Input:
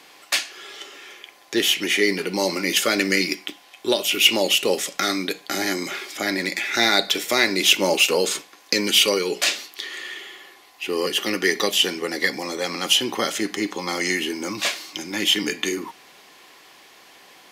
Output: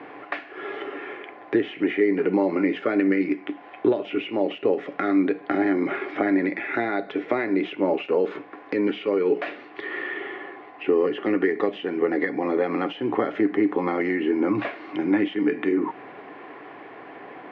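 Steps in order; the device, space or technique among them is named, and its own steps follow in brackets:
bass amplifier (downward compressor 5 to 1, threshold −32 dBFS, peak gain reduction 19.5 dB; loudspeaker in its box 89–2,000 Hz, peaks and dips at 120 Hz +9 dB, 290 Hz +10 dB, 430 Hz +7 dB, 700 Hz +5 dB)
level +8 dB

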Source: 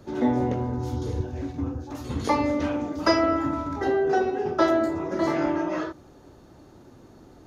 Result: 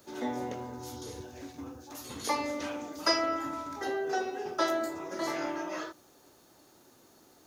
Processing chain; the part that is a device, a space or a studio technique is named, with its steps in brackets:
turntable without a phono preamp (RIAA equalisation recording; white noise bed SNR 37 dB)
level −6.5 dB

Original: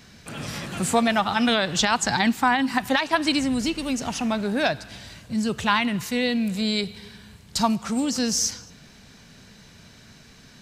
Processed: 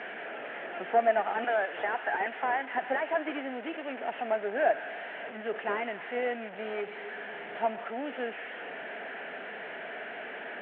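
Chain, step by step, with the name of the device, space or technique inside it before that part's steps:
0:01.44–0:02.75: meter weighting curve A
digital answering machine (band-pass filter 310–3,300 Hz; linear delta modulator 16 kbit/s, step −29 dBFS; loudspeaker in its box 380–3,900 Hz, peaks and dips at 420 Hz +5 dB, 680 Hz +9 dB, 1,100 Hz −9 dB, 1,700 Hz +5 dB, 2,500 Hz −3 dB, 3,800 Hz −10 dB)
level −5 dB

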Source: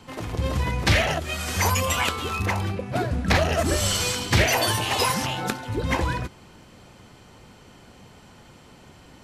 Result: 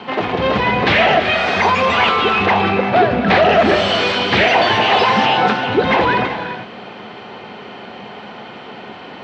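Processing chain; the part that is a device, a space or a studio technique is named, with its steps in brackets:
overdrive pedal into a guitar cabinet (mid-hump overdrive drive 24 dB, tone 7,600 Hz, clips at −7 dBFS; loudspeaker in its box 86–3,600 Hz, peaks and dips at 210 Hz +9 dB, 410 Hz +7 dB, 730 Hz +6 dB)
0:01.40–0:01.97: notch filter 3,000 Hz, Q 8.3
reverb whose tail is shaped and stops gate 410 ms rising, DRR 8 dB

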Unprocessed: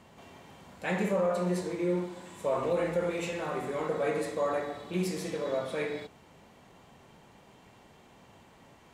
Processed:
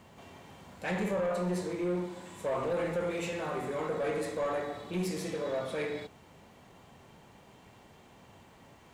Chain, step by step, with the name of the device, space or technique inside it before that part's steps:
open-reel tape (soft clipping −26 dBFS, distortion −15 dB; parametric band 92 Hz +3 dB 0.85 octaves; white noise bed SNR 45 dB)

